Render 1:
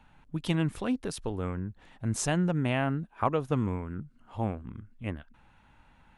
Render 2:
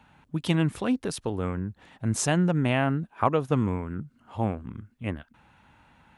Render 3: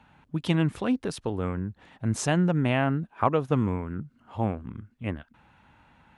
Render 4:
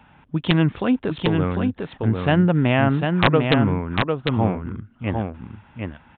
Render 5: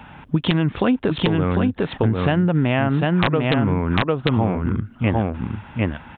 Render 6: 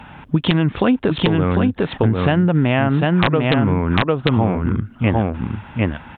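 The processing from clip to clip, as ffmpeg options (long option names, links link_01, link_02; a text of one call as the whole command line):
ffmpeg -i in.wav -af "highpass=72,volume=4dB" out.wav
ffmpeg -i in.wav -af "highshelf=frequency=7400:gain=-9" out.wav
ffmpeg -i in.wav -af "aresample=8000,aeval=exprs='(mod(3.76*val(0)+1,2)-1)/3.76':channel_layout=same,aresample=44100,aecho=1:1:750:0.596,volume=6dB" out.wav
ffmpeg -i in.wav -filter_complex "[0:a]asplit=2[link_01][link_02];[link_02]alimiter=limit=-12.5dB:level=0:latency=1:release=105,volume=2dB[link_03];[link_01][link_03]amix=inputs=2:normalize=0,acompressor=threshold=-19dB:ratio=6,volume=3.5dB" out.wav
ffmpeg -i in.wav -af "volume=3dB" -ar 44100 -c:a libmp3lame -b:a 112k out.mp3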